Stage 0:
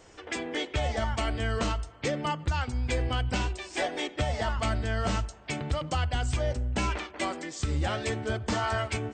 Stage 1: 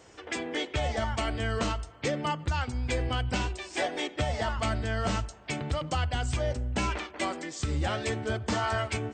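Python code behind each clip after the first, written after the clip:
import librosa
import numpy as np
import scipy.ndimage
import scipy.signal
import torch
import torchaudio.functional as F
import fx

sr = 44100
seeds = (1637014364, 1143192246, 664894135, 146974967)

y = scipy.signal.sosfilt(scipy.signal.butter(2, 55.0, 'highpass', fs=sr, output='sos'), x)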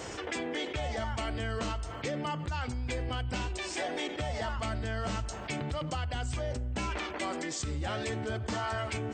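y = fx.env_flatten(x, sr, amount_pct=70)
y = y * librosa.db_to_amplitude(-7.5)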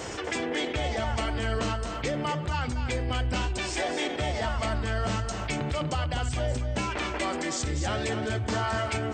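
y = x + 10.0 ** (-7.5 / 20.0) * np.pad(x, (int(244 * sr / 1000.0), 0))[:len(x)]
y = y * librosa.db_to_amplitude(4.5)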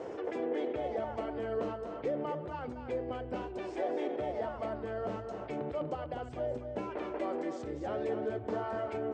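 y = fx.bandpass_q(x, sr, hz=460.0, q=1.6)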